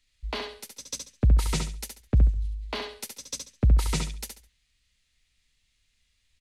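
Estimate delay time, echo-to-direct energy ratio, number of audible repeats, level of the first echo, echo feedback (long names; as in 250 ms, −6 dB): 69 ms, −5.0 dB, 3, −5.5 dB, 25%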